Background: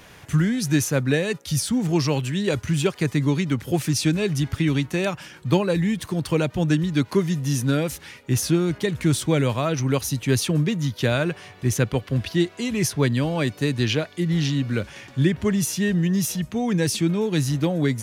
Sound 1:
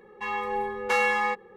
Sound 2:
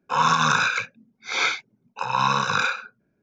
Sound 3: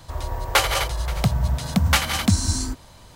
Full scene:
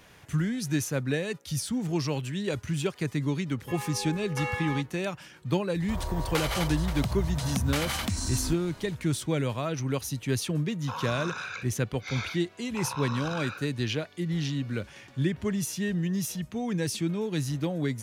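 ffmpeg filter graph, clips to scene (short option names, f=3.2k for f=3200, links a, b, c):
-filter_complex "[0:a]volume=-7.5dB[a];[3:a]acompressor=threshold=-23dB:ratio=4:attack=1.2:release=108:knee=1:detection=peak[b];[2:a]acompressor=threshold=-27dB:ratio=6:attack=3.2:release=140:knee=1:detection=peak[c];[1:a]atrim=end=1.56,asetpts=PTS-STARTPTS,volume=-9.5dB,afade=t=in:d=0.004:c=hsin,afade=t=out:st=1.556:d=0.004:c=hsin,adelay=3470[d];[b]atrim=end=3.15,asetpts=PTS-STARTPTS,volume=-3dB,afade=t=in:d=0.004:c=hsin,afade=t=out:st=3.146:d=0.004:c=hsin,adelay=5800[e];[c]atrim=end=3.22,asetpts=PTS-STARTPTS,volume=-6dB,afade=t=in:d=0.004:c=hsin,afade=t=out:st=3.216:d=0.004:c=hsin,adelay=10780[f];[a][d][e][f]amix=inputs=4:normalize=0"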